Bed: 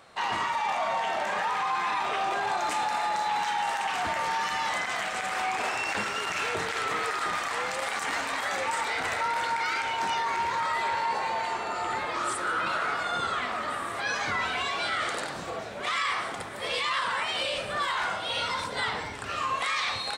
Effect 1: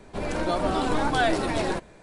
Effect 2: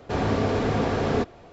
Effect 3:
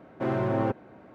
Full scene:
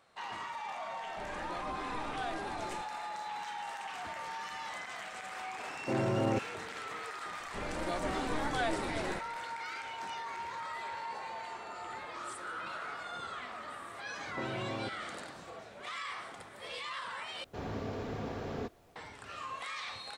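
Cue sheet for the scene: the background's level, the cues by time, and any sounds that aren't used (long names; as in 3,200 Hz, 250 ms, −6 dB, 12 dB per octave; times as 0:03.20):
bed −12.5 dB
0:01.03: mix in 1 −17.5 dB
0:05.67: mix in 3 −4 dB + low-pass filter 1,100 Hz
0:07.40: mix in 1 −10.5 dB
0:14.17: mix in 3 −2.5 dB + downward compressor, threshold −33 dBFS
0:17.44: overwrite with 2 −15 dB + background noise pink −55 dBFS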